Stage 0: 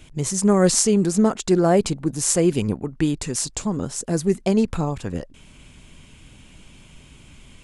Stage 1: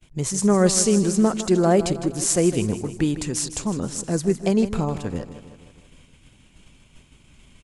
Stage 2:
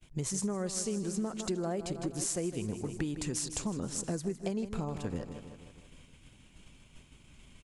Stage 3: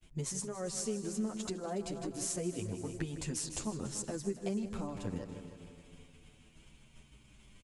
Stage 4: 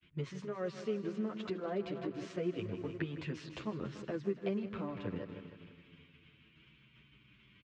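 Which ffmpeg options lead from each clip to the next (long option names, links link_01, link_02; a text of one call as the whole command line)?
ffmpeg -i in.wav -af "agate=range=-33dB:threshold=-40dB:ratio=3:detection=peak,aecho=1:1:157|314|471|628|785|942:0.237|0.133|0.0744|0.0416|0.0233|0.0131,volume=-1dB" out.wav
ffmpeg -i in.wav -af "acompressor=threshold=-26dB:ratio=10,volume=-4.5dB" out.wav
ffmpeg -i in.wav -filter_complex "[0:a]aecho=1:1:284|568|852|1136|1420:0.168|0.0907|0.049|0.0264|0.0143,asplit=2[link_01][link_02];[link_02]adelay=8.6,afreqshift=-0.35[link_03];[link_01][link_03]amix=inputs=2:normalize=1" out.wav
ffmpeg -i in.wav -filter_complex "[0:a]acrossover=split=380|1000[link_01][link_02][link_03];[link_02]aeval=exprs='sgn(val(0))*max(abs(val(0))-0.00106,0)':channel_layout=same[link_04];[link_01][link_04][link_03]amix=inputs=3:normalize=0,highpass=140,equalizer=frequency=170:width_type=q:width=4:gain=-3,equalizer=frequency=240:width_type=q:width=4:gain=-7,equalizer=frequency=800:width_type=q:width=4:gain=-8,lowpass=frequency=3200:width=0.5412,lowpass=frequency=3200:width=1.3066,volume=3.5dB" out.wav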